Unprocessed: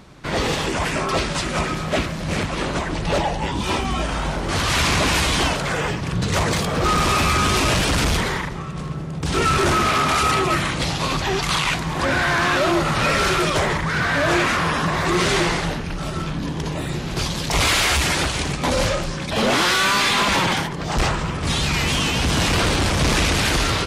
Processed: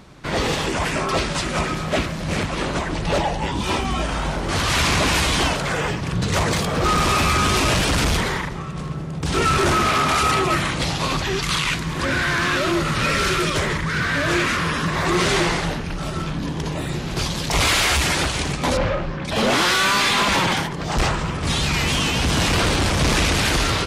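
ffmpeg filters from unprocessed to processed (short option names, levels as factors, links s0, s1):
-filter_complex "[0:a]asettb=1/sr,asplit=3[s0][s1][s2];[s0]atrim=end=11.234[s3];[s1]atrim=start=11.23:end=14.96,asetpts=PTS-STARTPTS,afade=t=in:d=0.004:c=qsin,afade=t=out:st=3.726:d=0.004:c=qsin,equalizer=f=760:t=o:w=0.78:g=-9[s4];[s2]atrim=start=14.956[s5];[s3][s4]acrossfade=d=0.004:c1=hsin:c2=qsin[s6];[s6][s5]acrossfade=d=0.004:c1=qsin:c2=hsin,asettb=1/sr,asplit=3[s7][s8][s9];[s7]atrim=end=18.774[s10];[s8]atrim=start=18.77:end=19.25,asetpts=PTS-STARTPTS,afade=t=in:d=0.004:c=qsin,afade=t=out:st=0.476:d=0.004:c=qsin,lowpass=2200[s11];[s9]atrim=start=19.246[s12];[s10][s11]acrossfade=d=0.004:c1=hsin:c2=qsin[s13];[s13][s12]acrossfade=d=0.004:c1=qsin:c2=hsin"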